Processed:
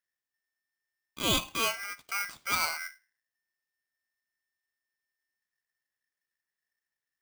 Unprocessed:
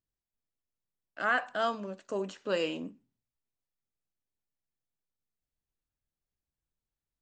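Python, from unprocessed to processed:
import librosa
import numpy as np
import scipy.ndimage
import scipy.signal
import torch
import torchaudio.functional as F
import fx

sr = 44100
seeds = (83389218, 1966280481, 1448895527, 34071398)

y = fx.dynamic_eq(x, sr, hz=2600.0, q=2.1, threshold_db=-47.0, ratio=4.0, max_db=6)
y = y * np.sign(np.sin(2.0 * np.pi * 1800.0 * np.arange(len(y)) / sr))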